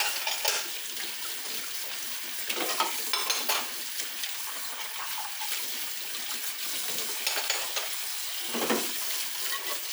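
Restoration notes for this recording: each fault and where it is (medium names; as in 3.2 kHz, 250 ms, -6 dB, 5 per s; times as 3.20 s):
4.42–5.36 s: clipped -28 dBFS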